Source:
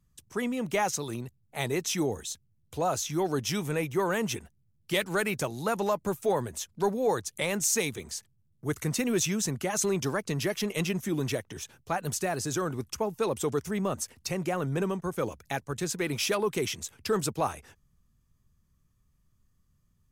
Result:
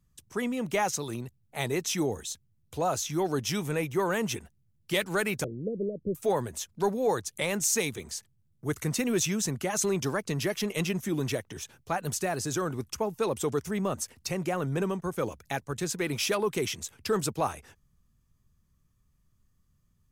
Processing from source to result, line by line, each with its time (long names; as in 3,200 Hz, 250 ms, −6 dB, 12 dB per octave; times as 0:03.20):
0:05.44–0:06.15: Butterworth low-pass 540 Hz 72 dB per octave